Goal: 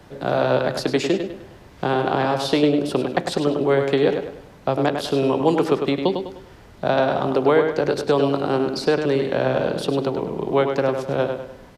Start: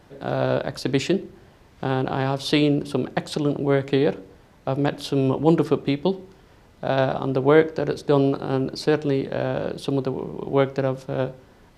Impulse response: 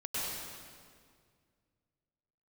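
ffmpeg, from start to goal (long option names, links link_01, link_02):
-filter_complex "[0:a]acrossover=split=100|350|1200[link_01][link_02][link_03][link_04];[link_01]acompressor=threshold=-53dB:ratio=4[link_05];[link_02]acompressor=threshold=-34dB:ratio=4[link_06];[link_03]acompressor=threshold=-22dB:ratio=4[link_07];[link_04]acompressor=threshold=-33dB:ratio=4[link_08];[link_05][link_06][link_07][link_08]amix=inputs=4:normalize=0,asplit=2[link_09][link_10];[link_10]adelay=101,lowpass=frequency=4900:poles=1,volume=-6dB,asplit=2[link_11][link_12];[link_12]adelay=101,lowpass=frequency=4900:poles=1,volume=0.4,asplit=2[link_13][link_14];[link_14]adelay=101,lowpass=frequency=4900:poles=1,volume=0.4,asplit=2[link_15][link_16];[link_16]adelay=101,lowpass=frequency=4900:poles=1,volume=0.4,asplit=2[link_17][link_18];[link_18]adelay=101,lowpass=frequency=4900:poles=1,volume=0.4[link_19];[link_11][link_13][link_15][link_17][link_19]amix=inputs=5:normalize=0[link_20];[link_09][link_20]amix=inputs=2:normalize=0,volume=5.5dB"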